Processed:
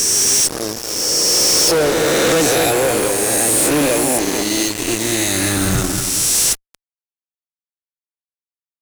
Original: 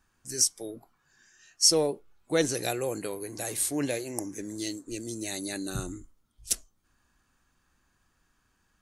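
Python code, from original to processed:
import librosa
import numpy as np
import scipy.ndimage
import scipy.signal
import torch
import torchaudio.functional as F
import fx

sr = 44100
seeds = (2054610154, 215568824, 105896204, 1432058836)

y = fx.spec_swells(x, sr, rise_s=1.99)
y = fx.echo_bbd(y, sr, ms=231, stages=4096, feedback_pct=39, wet_db=-8.5)
y = fx.fuzz(y, sr, gain_db=35.0, gate_db=-35.0)
y = y * librosa.db_to_amplitude(1.0)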